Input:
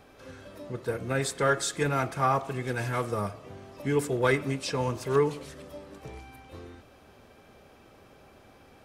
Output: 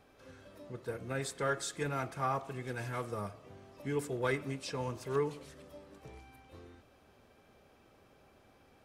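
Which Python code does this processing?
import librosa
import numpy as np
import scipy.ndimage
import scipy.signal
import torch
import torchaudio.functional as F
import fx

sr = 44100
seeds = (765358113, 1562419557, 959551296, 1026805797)

y = x * librosa.db_to_amplitude(-8.5)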